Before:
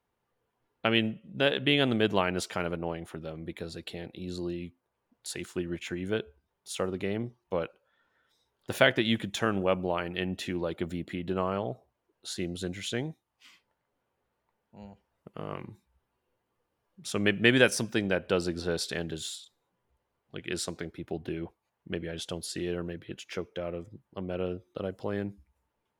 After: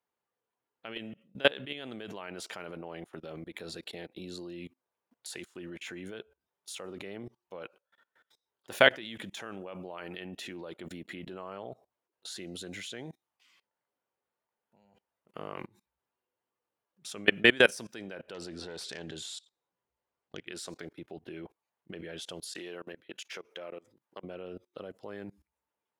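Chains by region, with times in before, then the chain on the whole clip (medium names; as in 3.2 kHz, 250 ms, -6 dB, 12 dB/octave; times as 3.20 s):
18.34–20.46 s: self-modulated delay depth 0.13 ms + low-pass 9.4 kHz 24 dB/octave + bass shelf 62 Hz +9.5 dB
22.44–24.24 s: high-pass 420 Hz 6 dB/octave + compression 4:1, threshold -39 dBFS
whole clip: high-pass 360 Hz 6 dB/octave; level held to a coarse grid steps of 24 dB; trim +6 dB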